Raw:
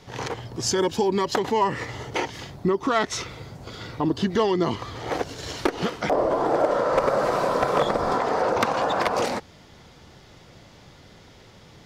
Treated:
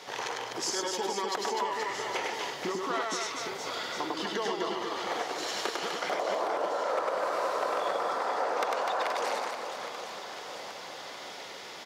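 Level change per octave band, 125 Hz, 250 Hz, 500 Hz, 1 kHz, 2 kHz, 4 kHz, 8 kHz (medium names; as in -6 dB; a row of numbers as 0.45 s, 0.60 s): -20.5 dB, -13.5 dB, -8.5 dB, -5.5 dB, -3.5 dB, -2.0 dB, -2.5 dB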